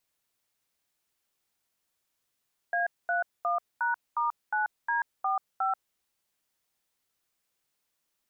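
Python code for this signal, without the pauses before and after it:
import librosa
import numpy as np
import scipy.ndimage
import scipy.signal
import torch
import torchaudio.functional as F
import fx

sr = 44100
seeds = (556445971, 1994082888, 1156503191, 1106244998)

y = fx.dtmf(sr, digits='A31#*9D45', tone_ms=136, gap_ms=223, level_db=-27.5)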